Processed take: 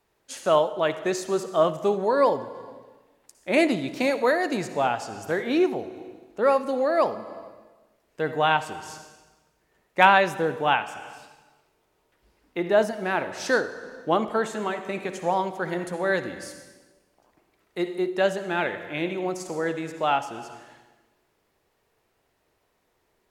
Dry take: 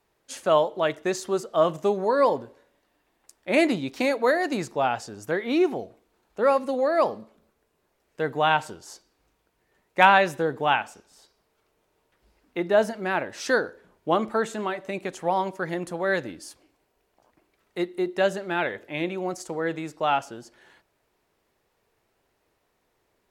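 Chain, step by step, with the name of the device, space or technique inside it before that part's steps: compressed reverb return (on a send at -6 dB: reverberation RT60 1.1 s, pre-delay 53 ms + compression, threshold -27 dBFS, peak gain reduction 13 dB)

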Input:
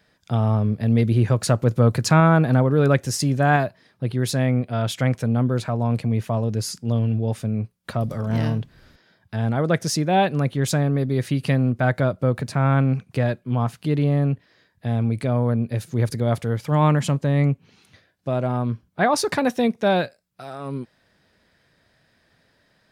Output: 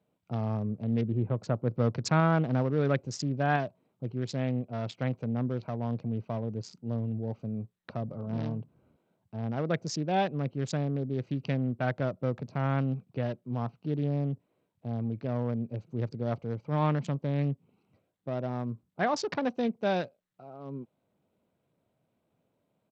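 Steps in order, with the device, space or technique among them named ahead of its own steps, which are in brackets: local Wiener filter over 25 samples; 1.01–1.68 s: low-pass 1.4 kHz 6 dB/octave; Bluetooth headset (high-pass 120 Hz 12 dB/octave; resampled via 16 kHz; trim -8.5 dB; SBC 64 kbps 32 kHz)

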